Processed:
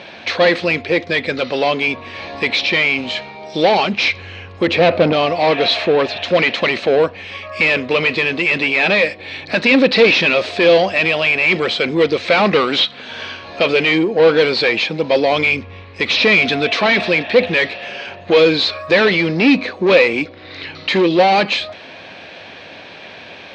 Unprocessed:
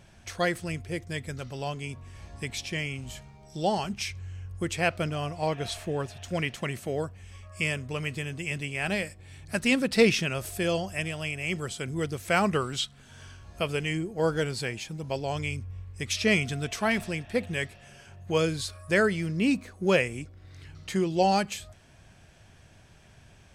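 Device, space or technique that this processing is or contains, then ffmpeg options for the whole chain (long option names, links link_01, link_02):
overdrive pedal into a guitar cabinet: -filter_complex "[0:a]asettb=1/sr,asplit=3[link_01][link_02][link_03];[link_01]atrim=end=4.674[link_04];[link_02]atrim=start=4.67:end=5.13,asetpts=PTS-STARTPTS,afade=type=in:duration=0.004:curve=qsin,afade=type=out:start_time=0.456:duration=0.004:curve=qsin,tiltshelf=frequency=1300:gain=7.5[link_05];[link_03]atrim=start=5.126[link_06];[link_04][link_05]acrossfade=duration=0.004:curve1=hsin:curve2=qsin[link_07];[link_07][link_06]acrossfade=duration=0.004:curve1=qsin:curve2=hsin,asplit=2[link_08][link_09];[link_09]highpass=frequency=720:poles=1,volume=29dB,asoftclip=type=tanh:threshold=-9dB[link_10];[link_08][link_10]amix=inputs=2:normalize=0,lowpass=frequency=2800:poles=1,volume=-6dB,highpass=110,equalizer=frequency=130:width_type=q:width=4:gain=-9,equalizer=frequency=280:width_type=q:width=4:gain=5,equalizer=frequency=510:width_type=q:width=4:gain=7,equalizer=frequency=1400:width_type=q:width=4:gain=-4,equalizer=frequency=2400:width_type=q:width=4:gain=5,equalizer=frequency=4000:width_type=q:width=4:gain=9,lowpass=frequency=4600:width=0.5412,lowpass=frequency=4600:width=1.3066,volume=2.5dB"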